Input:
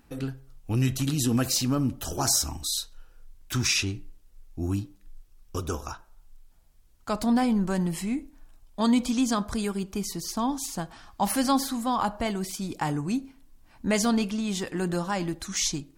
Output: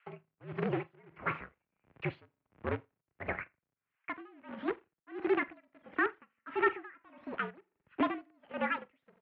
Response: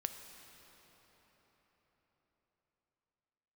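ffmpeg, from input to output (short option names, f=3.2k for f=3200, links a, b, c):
-filter_complex "[0:a]adynamicequalizer=threshold=0.00631:dfrequency=180:dqfactor=6.3:tfrequency=180:tqfactor=6.3:attack=5:release=100:ratio=0.375:range=2:mode=cutabove:tftype=bell,acrossover=split=760|1400[a][b][c];[a]acrusher=bits=5:dc=4:mix=0:aa=0.000001[d];[b]acontrast=38[e];[d][e][c]amix=inputs=3:normalize=0,asoftclip=type=tanh:threshold=-20.5dB,asplit=2[f][g];[g]aecho=0:1:76|152|228|304|380:0.141|0.0777|0.0427|0.0235|0.0129[h];[f][h]amix=inputs=2:normalize=0,asetrate=76440,aresample=44100,highpass=f=170:t=q:w=0.5412,highpass=f=170:t=q:w=1.307,lowpass=f=2.7k:t=q:w=0.5176,lowpass=f=2.7k:t=q:w=0.7071,lowpass=f=2.7k:t=q:w=1.932,afreqshift=-69,aeval=exprs='val(0)*pow(10,-32*(0.5-0.5*cos(2*PI*1.5*n/s))/20)':c=same"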